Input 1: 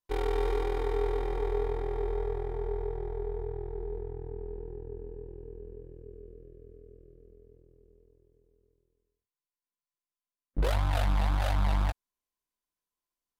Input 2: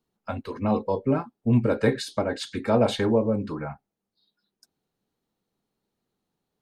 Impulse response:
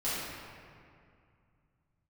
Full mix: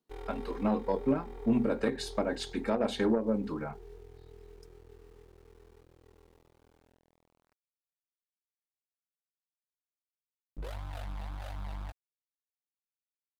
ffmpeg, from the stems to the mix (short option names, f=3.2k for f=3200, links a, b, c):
-filter_complex "[0:a]aeval=exprs='val(0)*gte(abs(val(0)),0.00501)':c=same,volume=-7.5dB[a];[1:a]lowshelf=f=130:t=q:w=1.5:g=-12,bandreject=f=60:t=h:w=6,bandreject=f=120:t=h:w=6,bandreject=f=180:t=h:w=6,bandreject=f=240:t=h:w=6,volume=0.5dB[b];[a][b]amix=inputs=2:normalize=0,aeval=exprs='0.473*(cos(1*acos(clip(val(0)/0.473,-1,1)))-cos(1*PI/2))+0.075*(cos(3*acos(clip(val(0)/0.473,-1,1)))-cos(3*PI/2))':c=same,alimiter=limit=-17dB:level=0:latency=1:release=165"